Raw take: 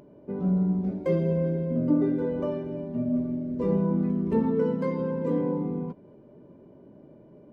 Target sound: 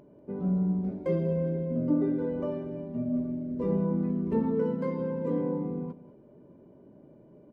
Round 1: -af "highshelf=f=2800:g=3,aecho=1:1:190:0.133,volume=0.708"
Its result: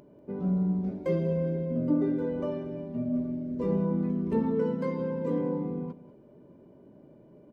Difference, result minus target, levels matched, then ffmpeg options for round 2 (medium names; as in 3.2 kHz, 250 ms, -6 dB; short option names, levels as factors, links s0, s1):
4 kHz band +4.5 dB
-af "highshelf=f=2800:g=-5,aecho=1:1:190:0.133,volume=0.708"